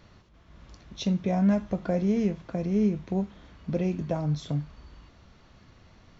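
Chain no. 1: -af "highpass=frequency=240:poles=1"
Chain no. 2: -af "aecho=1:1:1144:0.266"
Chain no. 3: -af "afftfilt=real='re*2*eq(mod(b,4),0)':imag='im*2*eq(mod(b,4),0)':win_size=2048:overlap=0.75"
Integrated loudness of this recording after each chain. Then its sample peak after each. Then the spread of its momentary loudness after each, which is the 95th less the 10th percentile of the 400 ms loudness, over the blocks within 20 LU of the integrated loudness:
−31.5, −28.0, −31.5 LKFS; −16.5, −14.0, −14.5 dBFS; 10, 16, 15 LU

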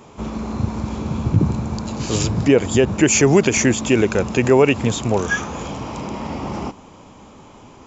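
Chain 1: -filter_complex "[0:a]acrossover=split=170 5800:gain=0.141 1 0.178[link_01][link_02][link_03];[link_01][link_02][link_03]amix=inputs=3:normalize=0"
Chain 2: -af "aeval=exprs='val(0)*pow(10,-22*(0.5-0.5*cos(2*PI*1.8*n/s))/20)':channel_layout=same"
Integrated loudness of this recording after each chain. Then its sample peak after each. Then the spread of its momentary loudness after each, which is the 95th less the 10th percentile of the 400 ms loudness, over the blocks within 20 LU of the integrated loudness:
−20.5, −24.5 LKFS; −2.5, −2.5 dBFS; 15, 15 LU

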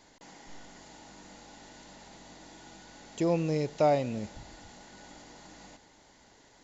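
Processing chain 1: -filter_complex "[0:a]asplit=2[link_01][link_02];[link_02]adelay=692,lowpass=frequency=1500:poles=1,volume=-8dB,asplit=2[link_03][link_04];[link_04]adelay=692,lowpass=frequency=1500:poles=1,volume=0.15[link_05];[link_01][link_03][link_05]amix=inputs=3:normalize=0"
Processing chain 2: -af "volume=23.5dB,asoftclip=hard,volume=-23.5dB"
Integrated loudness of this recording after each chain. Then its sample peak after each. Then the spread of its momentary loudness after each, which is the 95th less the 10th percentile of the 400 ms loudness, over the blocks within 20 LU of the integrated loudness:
−30.0, −31.0 LKFS; −15.0, −23.5 dBFS; 22, 22 LU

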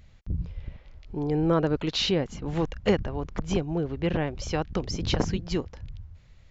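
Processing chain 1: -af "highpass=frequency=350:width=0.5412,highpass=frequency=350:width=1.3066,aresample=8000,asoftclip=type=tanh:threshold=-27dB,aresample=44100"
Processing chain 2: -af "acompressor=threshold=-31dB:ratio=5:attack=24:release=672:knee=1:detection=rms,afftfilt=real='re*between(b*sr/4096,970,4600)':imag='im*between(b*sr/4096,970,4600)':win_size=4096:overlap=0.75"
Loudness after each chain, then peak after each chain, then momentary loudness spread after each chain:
−35.5, −44.0 LKFS; −24.0, −23.0 dBFS; 7, 25 LU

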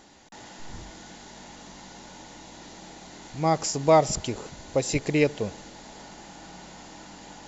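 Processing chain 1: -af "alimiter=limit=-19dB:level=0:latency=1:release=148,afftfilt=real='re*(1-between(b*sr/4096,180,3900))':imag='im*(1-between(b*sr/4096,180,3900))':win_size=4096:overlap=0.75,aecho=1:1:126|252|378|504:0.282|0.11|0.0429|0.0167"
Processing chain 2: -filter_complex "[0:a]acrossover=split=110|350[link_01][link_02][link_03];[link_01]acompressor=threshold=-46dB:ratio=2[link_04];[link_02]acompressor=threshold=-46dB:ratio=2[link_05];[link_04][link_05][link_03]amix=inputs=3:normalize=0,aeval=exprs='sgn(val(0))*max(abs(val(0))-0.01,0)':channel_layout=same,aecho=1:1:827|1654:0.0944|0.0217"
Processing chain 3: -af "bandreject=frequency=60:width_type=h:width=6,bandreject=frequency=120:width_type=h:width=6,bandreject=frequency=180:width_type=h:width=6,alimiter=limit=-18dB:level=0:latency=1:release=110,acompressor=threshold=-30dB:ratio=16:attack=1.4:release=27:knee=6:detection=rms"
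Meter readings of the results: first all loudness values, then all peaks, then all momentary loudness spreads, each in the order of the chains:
−39.0, −27.0, −40.0 LKFS; −18.5, −9.0, −24.0 dBFS; 16, 17, 10 LU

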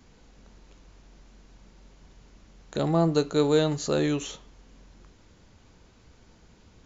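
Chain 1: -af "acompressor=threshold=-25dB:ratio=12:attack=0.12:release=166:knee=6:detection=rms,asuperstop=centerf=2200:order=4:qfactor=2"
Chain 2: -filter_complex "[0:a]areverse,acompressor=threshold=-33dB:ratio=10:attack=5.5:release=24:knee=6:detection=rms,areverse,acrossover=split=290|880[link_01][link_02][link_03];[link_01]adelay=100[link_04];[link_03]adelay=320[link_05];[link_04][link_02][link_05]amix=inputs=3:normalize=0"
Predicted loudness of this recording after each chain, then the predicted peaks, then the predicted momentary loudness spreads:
−34.0, −38.5 LKFS; −22.5, −24.0 dBFS; 9, 21 LU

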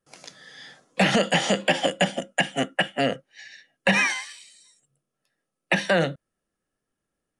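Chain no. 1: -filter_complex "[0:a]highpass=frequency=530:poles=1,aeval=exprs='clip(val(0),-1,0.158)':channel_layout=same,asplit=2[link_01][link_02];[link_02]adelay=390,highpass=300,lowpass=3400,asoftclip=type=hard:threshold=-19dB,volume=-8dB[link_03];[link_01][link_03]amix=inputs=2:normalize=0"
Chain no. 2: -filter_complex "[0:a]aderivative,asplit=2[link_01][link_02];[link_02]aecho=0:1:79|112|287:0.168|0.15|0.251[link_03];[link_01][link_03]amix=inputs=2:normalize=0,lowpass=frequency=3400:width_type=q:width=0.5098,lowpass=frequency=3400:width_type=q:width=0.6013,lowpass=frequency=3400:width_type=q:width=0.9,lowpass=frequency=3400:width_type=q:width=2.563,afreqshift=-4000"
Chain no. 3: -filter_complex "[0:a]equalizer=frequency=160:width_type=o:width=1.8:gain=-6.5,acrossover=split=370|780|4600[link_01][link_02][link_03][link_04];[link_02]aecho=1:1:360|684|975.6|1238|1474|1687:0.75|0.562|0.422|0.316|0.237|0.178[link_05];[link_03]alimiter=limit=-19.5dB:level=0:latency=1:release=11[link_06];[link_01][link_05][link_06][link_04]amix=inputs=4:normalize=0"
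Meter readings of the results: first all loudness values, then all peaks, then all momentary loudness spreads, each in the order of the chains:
−25.5, −36.5, −27.0 LKFS; −10.0, −19.0, −10.0 dBFS; 21, 16, 20 LU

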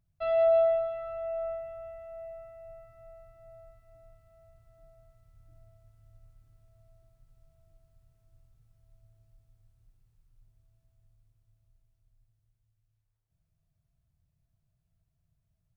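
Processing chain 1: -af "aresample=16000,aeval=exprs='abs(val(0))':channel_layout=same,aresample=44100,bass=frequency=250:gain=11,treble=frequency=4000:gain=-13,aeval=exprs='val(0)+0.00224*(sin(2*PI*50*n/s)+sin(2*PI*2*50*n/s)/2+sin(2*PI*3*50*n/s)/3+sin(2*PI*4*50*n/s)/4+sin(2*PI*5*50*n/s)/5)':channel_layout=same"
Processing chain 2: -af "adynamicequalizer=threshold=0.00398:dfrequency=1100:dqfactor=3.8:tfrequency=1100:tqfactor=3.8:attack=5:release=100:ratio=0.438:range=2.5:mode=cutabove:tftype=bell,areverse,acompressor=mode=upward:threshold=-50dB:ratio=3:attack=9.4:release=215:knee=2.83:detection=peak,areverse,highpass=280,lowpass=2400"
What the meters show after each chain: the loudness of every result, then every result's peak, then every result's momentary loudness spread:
−37.5, −29.0 LKFS; −9.5, −18.0 dBFS; 21, 21 LU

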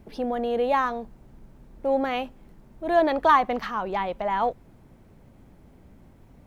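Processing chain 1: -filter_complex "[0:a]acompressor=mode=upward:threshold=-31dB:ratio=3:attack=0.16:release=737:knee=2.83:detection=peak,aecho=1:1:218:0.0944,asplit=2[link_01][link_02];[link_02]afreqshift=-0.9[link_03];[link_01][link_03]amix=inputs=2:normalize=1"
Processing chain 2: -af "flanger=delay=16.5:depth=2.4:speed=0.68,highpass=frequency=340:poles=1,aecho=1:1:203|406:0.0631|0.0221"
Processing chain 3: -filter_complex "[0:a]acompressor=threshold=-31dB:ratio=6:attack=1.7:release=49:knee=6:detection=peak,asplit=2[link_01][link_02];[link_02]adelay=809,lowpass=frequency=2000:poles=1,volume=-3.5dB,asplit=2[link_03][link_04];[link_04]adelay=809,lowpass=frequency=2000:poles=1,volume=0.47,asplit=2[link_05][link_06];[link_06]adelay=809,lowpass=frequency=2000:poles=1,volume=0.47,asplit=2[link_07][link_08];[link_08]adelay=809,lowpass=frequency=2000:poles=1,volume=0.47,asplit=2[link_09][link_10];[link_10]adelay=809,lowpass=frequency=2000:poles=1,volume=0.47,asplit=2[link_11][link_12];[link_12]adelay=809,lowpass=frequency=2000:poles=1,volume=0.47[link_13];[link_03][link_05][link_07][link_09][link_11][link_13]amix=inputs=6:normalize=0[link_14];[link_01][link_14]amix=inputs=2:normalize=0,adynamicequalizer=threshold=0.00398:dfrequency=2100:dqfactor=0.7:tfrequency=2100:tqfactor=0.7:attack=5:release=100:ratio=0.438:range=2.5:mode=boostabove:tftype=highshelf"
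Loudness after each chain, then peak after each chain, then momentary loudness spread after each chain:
−28.5, −28.5, −35.5 LKFS; −11.0, −9.5, −21.5 dBFS; 15, 15, 11 LU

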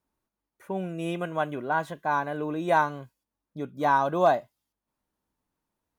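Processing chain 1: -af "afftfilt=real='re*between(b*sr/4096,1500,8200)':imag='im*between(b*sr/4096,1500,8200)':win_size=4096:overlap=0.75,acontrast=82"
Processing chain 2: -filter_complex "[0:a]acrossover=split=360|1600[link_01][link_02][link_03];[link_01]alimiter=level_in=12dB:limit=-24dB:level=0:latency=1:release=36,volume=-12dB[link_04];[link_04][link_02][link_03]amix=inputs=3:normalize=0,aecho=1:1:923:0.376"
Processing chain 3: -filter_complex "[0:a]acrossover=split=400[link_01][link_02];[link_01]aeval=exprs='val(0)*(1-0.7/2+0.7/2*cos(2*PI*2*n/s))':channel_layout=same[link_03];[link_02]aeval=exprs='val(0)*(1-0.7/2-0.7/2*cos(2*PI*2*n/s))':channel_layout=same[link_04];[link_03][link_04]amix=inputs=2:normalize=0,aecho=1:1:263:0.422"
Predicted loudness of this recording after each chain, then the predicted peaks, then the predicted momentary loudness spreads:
−31.5, −28.5, −29.5 LKFS; −14.5, −9.5, −9.5 dBFS; 11, 13, 17 LU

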